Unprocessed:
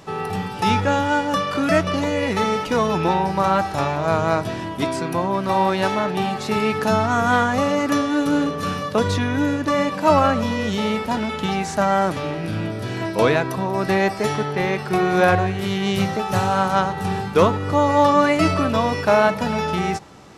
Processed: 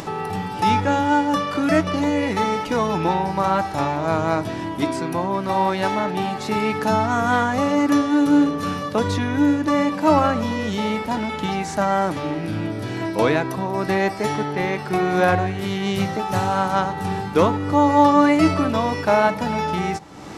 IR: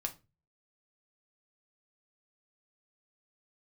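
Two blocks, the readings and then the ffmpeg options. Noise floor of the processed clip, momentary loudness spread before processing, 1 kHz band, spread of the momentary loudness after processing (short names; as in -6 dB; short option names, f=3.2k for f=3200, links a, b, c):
-30 dBFS, 7 LU, 0.0 dB, 8 LU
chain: -filter_complex "[0:a]acompressor=mode=upward:threshold=-23dB:ratio=2.5,asplit=2[a][b];[b]asplit=3[c][d][e];[c]bandpass=f=300:t=q:w=8,volume=0dB[f];[d]bandpass=f=870:t=q:w=8,volume=-6dB[g];[e]bandpass=f=2.24k:t=q:w=8,volume=-9dB[h];[f][g][h]amix=inputs=3:normalize=0[i];[1:a]atrim=start_sample=2205,lowpass=3.4k[j];[i][j]afir=irnorm=-1:irlink=0,volume=1dB[k];[a][k]amix=inputs=2:normalize=0,volume=-2dB"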